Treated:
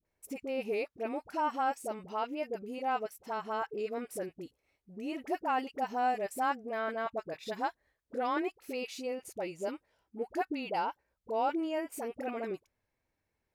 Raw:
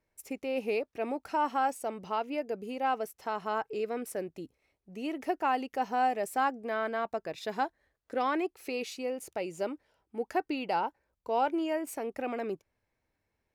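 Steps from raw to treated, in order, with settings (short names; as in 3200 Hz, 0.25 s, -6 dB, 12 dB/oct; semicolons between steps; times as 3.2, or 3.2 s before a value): vibrato 0.94 Hz 31 cents; dispersion highs, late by 49 ms, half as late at 700 Hz; gain -2.5 dB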